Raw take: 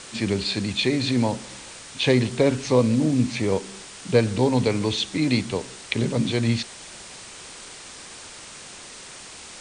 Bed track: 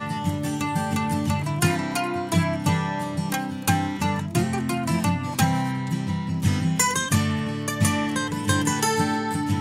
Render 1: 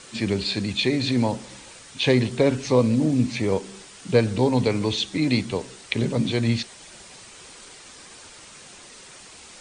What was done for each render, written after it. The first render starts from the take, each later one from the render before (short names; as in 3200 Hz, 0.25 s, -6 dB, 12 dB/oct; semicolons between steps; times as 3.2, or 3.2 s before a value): denoiser 6 dB, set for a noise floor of -42 dBFS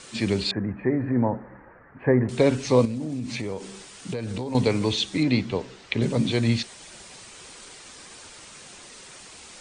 0.51–2.29 elliptic low-pass 1800 Hz, stop band 50 dB; 2.85–4.55 compressor 10:1, threshold -26 dBFS; 5.23–6.02 air absorption 120 m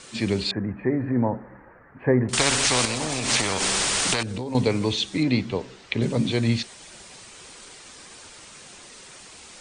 2.33–4.23 spectral compressor 4:1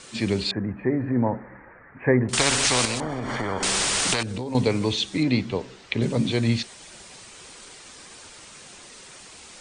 1.26–2.17 resonant high shelf 3300 Hz -13 dB, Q 3; 3–3.63 polynomial smoothing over 41 samples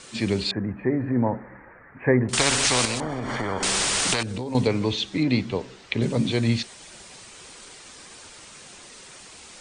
4.67–5.3 air absorption 68 m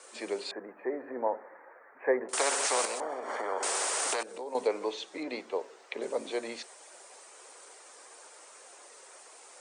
HPF 460 Hz 24 dB/oct; bell 3500 Hz -14 dB 2.2 oct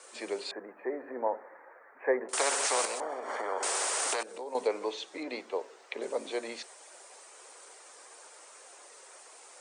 low shelf 140 Hz -9.5 dB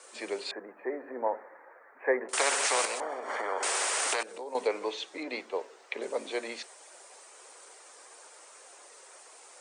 HPF 110 Hz; dynamic EQ 2300 Hz, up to +5 dB, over -45 dBFS, Q 0.88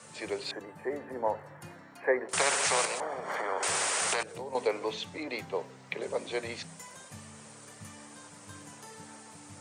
add bed track -27.5 dB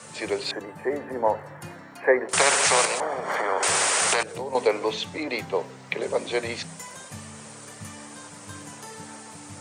gain +7.5 dB